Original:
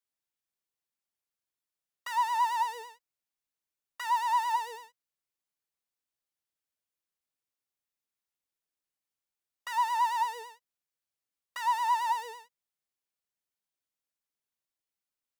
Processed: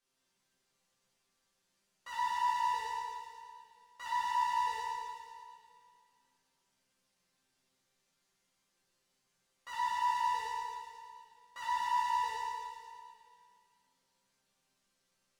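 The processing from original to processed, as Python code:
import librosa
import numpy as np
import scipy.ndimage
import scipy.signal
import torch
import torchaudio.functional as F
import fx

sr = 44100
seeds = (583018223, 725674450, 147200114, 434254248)

y = scipy.signal.sosfilt(scipy.signal.butter(2, 8500.0, 'lowpass', fs=sr, output='sos'), x)
y = fx.low_shelf(y, sr, hz=370.0, db=6.0)
y = fx.resonator_bank(y, sr, root=48, chord='sus4', decay_s=0.25)
y = fx.power_curve(y, sr, exponent=0.7)
y = fx.room_flutter(y, sr, wall_m=10.7, rt60_s=0.29)
y = fx.rev_plate(y, sr, seeds[0], rt60_s=2.2, hf_ratio=1.0, predelay_ms=0, drr_db=-6.5)
y = y * 10.0 ** (-2.0 / 20.0)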